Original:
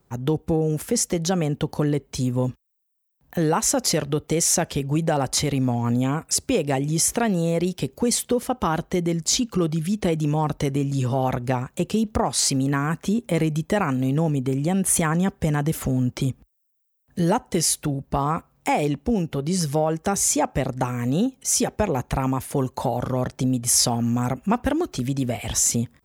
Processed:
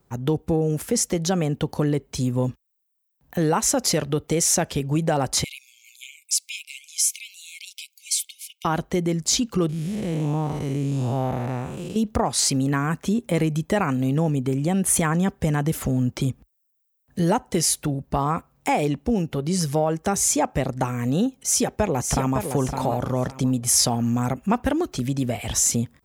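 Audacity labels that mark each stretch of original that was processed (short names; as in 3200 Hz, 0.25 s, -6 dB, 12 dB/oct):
5.440000	8.650000	brick-wall FIR high-pass 2100 Hz
9.690000	11.960000	time blur width 0.226 s
21.340000	22.390000	echo throw 0.56 s, feedback 25%, level -6.5 dB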